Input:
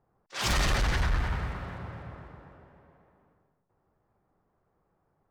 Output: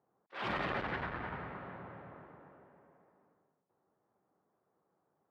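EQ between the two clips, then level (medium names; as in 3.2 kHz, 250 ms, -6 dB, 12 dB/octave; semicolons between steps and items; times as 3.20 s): high-pass 220 Hz 12 dB/octave; distance through air 470 m; treble shelf 5.9 kHz -5.5 dB; -2.0 dB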